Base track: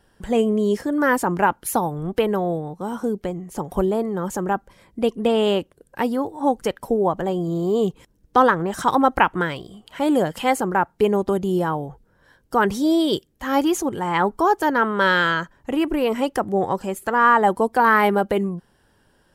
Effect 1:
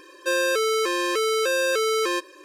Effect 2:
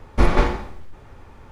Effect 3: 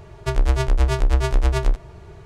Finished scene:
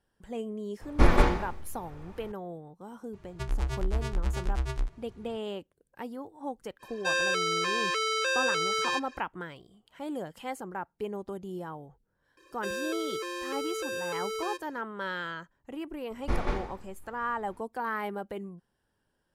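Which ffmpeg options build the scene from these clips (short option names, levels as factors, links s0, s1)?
-filter_complex "[2:a]asplit=2[s0][s1];[1:a]asplit=2[s2][s3];[0:a]volume=0.141[s4];[3:a]equalizer=f=540:w=1.8:g=-7.5[s5];[s2]highpass=740,lowpass=6300[s6];[s3]acontrast=44[s7];[s0]atrim=end=1.51,asetpts=PTS-STARTPTS,volume=0.631,afade=t=in:d=0.004:c=hsin,afade=t=out:st=1.506:d=0.004:c=hsin,adelay=810[s8];[s5]atrim=end=2.25,asetpts=PTS-STARTPTS,volume=0.266,afade=t=in:d=0.004:c=hsin,afade=t=out:st=2.246:d=0.004:c=hsin,adelay=138033S[s9];[s6]atrim=end=2.44,asetpts=PTS-STARTPTS,volume=0.794,afade=t=in:d=0.05,afade=t=out:st=2.39:d=0.05,adelay=6790[s10];[s7]atrim=end=2.44,asetpts=PTS-STARTPTS,volume=0.133,afade=t=in:d=0.004:c=hsin,afade=t=out:st=2.436:d=0.004:c=hsin,adelay=12370[s11];[s1]atrim=end=1.51,asetpts=PTS-STARTPTS,volume=0.224,afade=t=in:d=0.004:c=hsin,afade=t=out:st=1.506:d=0.004:c=hsin,adelay=16100[s12];[s4][s8][s9][s10][s11][s12]amix=inputs=6:normalize=0"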